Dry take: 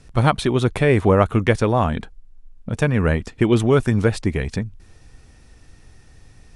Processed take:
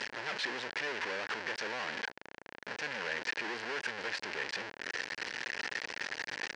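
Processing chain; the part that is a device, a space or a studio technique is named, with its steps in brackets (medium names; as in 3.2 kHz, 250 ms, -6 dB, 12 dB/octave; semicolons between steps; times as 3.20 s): home computer beeper (one-bit comparator; cabinet simulation 660–4700 Hz, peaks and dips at 690 Hz -8 dB, 1.2 kHz -9 dB, 1.7 kHz +6 dB, 3.6 kHz -7 dB); trim -9 dB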